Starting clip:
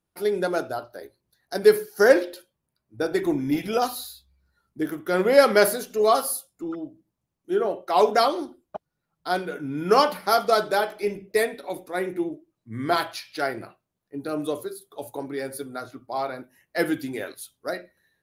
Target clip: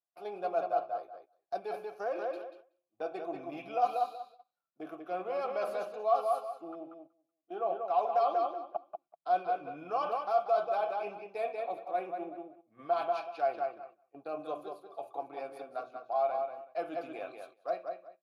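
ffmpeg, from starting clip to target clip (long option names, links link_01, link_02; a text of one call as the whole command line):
ffmpeg -i in.wav -filter_complex "[0:a]aeval=exprs='if(lt(val(0),0),0.708*val(0),val(0))':channel_layout=same,aecho=1:1:6:0.31,alimiter=limit=-11.5dB:level=0:latency=1:release=99,lowshelf=frequency=100:gain=-7.5,asplit=2[link_01][link_02];[link_02]adelay=188,lowpass=frequency=4200:poles=1,volume=-6dB,asplit=2[link_03][link_04];[link_04]adelay=188,lowpass=frequency=4200:poles=1,volume=0.22,asplit=2[link_05][link_06];[link_06]adelay=188,lowpass=frequency=4200:poles=1,volume=0.22[link_07];[link_01][link_03][link_05][link_07]amix=inputs=4:normalize=0,areverse,acompressor=threshold=-24dB:ratio=6,areverse,asplit=3[link_08][link_09][link_10];[link_08]bandpass=frequency=730:width_type=q:width=8,volume=0dB[link_11];[link_09]bandpass=frequency=1090:width_type=q:width=8,volume=-6dB[link_12];[link_10]bandpass=frequency=2440:width_type=q:width=8,volume=-9dB[link_13];[link_11][link_12][link_13]amix=inputs=3:normalize=0,agate=range=-11dB:threshold=-58dB:ratio=16:detection=peak,highpass=51,equalizer=frequency=150:width_type=o:width=0.77:gain=3.5,volume=5dB" out.wav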